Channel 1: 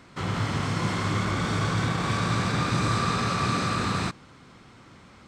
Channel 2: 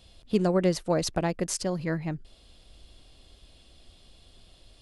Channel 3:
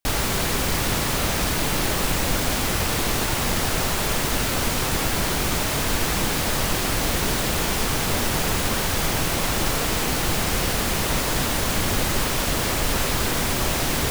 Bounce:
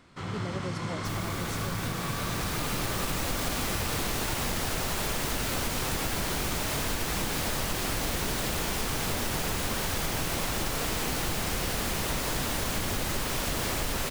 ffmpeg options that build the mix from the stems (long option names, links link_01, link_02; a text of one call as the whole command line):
ffmpeg -i stem1.wav -i stem2.wav -i stem3.wav -filter_complex "[0:a]volume=-6.5dB[link_01];[1:a]volume=-13.5dB,asplit=2[link_02][link_03];[2:a]adelay=1000,volume=1.5dB[link_04];[link_03]apad=whole_len=666207[link_05];[link_04][link_05]sidechaincompress=threshold=-50dB:ratio=8:attack=16:release=1310[link_06];[link_01][link_02][link_06]amix=inputs=3:normalize=0,acompressor=threshold=-27dB:ratio=6" out.wav